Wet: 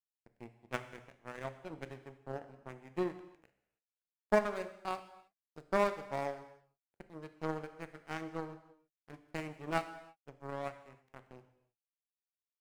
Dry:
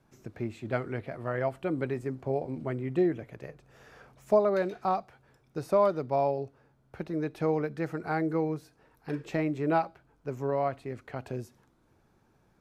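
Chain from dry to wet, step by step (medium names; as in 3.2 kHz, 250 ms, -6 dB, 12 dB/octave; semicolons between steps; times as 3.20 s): median filter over 9 samples; treble shelf 3.2 kHz +7.5 dB; in parallel at -3 dB: hard clipper -26.5 dBFS, distortion -8 dB; on the sum: power-law waveshaper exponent 3; gated-style reverb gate 350 ms falling, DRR 9.5 dB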